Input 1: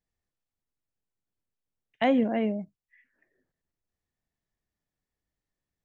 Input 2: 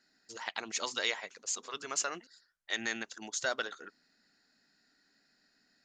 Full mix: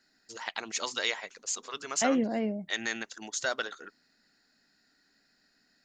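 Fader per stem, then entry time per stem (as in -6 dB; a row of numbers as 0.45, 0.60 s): -3.5, +2.0 dB; 0.00, 0.00 s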